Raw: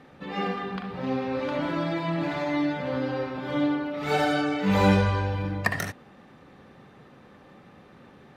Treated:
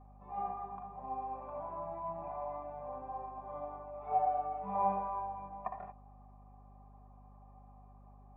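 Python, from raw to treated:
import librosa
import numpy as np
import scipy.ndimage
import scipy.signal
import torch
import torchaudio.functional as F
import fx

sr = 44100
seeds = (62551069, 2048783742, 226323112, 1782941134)

y = fx.formant_cascade(x, sr, vowel='a')
y = y + 0.68 * np.pad(y, (int(5.0 * sr / 1000.0), 0))[:len(y)]
y = fx.add_hum(y, sr, base_hz=50, snr_db=17)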